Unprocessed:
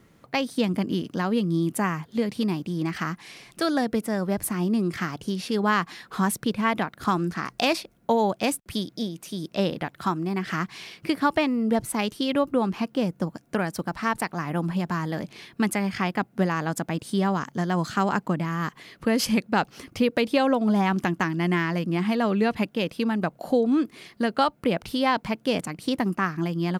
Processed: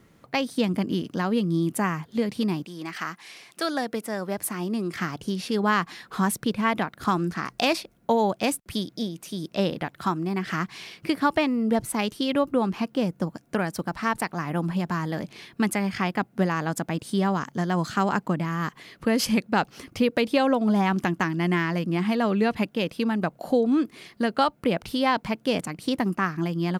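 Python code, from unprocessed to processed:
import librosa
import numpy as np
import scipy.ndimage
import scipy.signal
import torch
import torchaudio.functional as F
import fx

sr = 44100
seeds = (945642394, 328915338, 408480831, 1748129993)

y = fx.highpass(x, sr, hz=fx.line((2.64, 780.0), (4.96, 270.0)), slope=6, at=(2.64, 4.96), fade=0.02)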